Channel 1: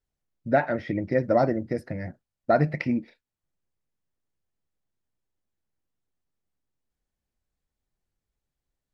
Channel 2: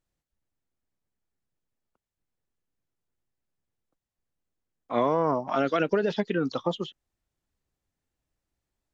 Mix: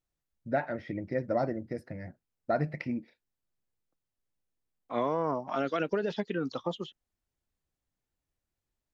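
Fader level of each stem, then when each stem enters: -8.0, -5.5 dB; 0.00, 0.00 s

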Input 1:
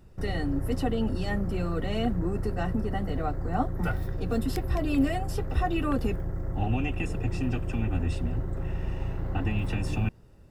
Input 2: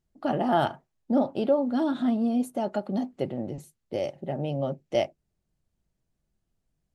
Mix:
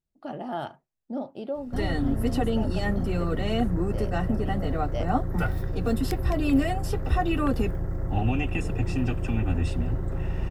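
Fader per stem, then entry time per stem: +2.5, -9.0 dB; 1.55, 0.00 s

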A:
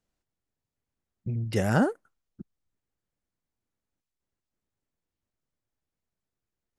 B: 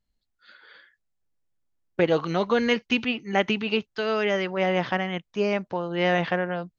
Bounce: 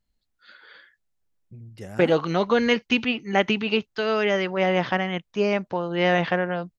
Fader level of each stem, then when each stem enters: -12.5, +2.0 dB; 0.25, 0.00 s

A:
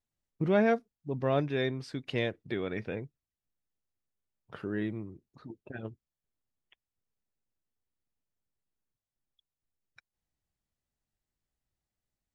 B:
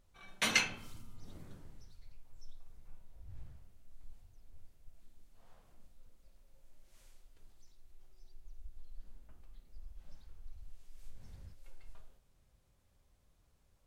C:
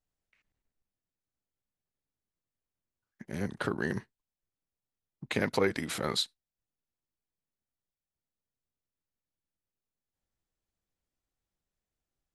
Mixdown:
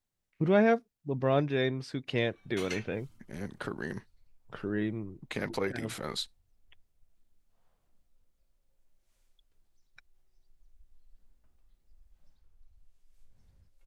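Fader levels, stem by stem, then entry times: +1.5, -11.0, -5.0 dB; 0.00, 2.15, 0.00 s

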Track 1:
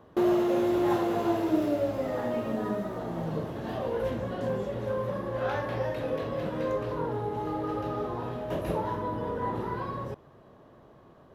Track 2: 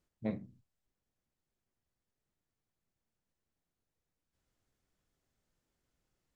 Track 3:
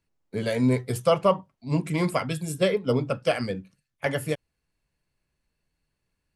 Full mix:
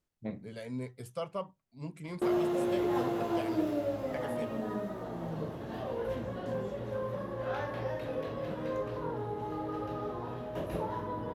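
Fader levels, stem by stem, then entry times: -5.0, -2.5, -16.5 dB; 2.05, 0.00, 0.10 s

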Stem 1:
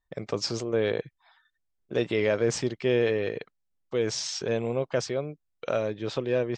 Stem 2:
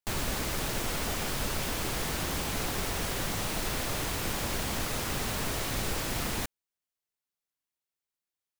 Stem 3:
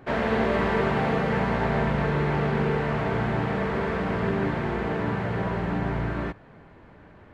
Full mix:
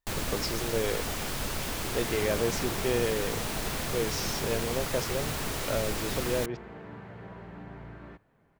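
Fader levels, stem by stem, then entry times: -4.5, -1.0, -17.0 dB; 0.00, 0.00, 1.85 s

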